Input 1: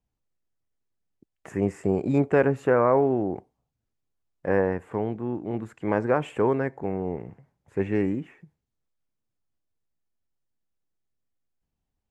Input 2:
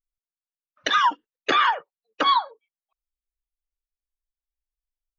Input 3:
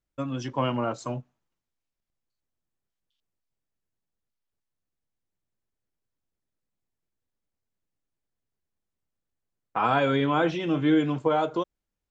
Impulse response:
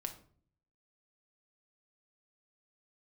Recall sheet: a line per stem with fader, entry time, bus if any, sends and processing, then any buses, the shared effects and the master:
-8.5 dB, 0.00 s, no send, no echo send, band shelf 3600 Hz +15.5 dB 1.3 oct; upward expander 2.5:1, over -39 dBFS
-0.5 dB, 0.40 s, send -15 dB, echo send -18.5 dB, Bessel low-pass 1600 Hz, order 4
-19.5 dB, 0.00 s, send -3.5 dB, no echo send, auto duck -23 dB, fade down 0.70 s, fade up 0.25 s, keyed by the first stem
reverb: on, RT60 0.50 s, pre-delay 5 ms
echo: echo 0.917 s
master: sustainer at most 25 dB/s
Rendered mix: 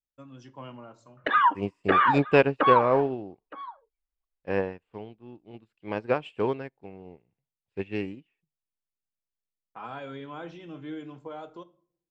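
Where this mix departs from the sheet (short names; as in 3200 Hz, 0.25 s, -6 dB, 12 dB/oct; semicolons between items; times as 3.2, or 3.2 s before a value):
stem 1 -8.5 dB -> +2.0 dB; master: missing sustainer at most 25 dB/s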